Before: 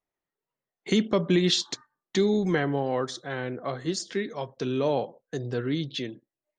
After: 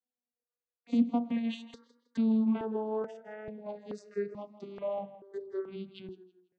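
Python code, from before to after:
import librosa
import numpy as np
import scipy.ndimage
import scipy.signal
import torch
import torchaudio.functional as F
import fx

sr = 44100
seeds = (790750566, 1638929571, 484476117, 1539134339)

y = fx.vocoder_glide(x, sr, note=59, semitones=-5)
y = fx.dynamic_eq(y, sr, hz=500.0, q=1.0, threshold_db=-36.0, ratio=4.0, max_db=5)
y = fx.wow_flutter(y, sr, seeds[0], rate_hz=2.1, depth_cents=19.0)
y = fx.air_absorb(y, sr, metres=52.0)
y = fx.echo_tape(y, sr, ms=163, feedback_pct=35, wet_db=-14.5, lp_hz=6000.0, drive_db=12.0, wow_cents=36)
y = fx.phaser_held(y, sr, hz=2.3, low_hz=350.0, high_hz=1800.0)
y = y * 10.0 ** (-3.5 / 20.0)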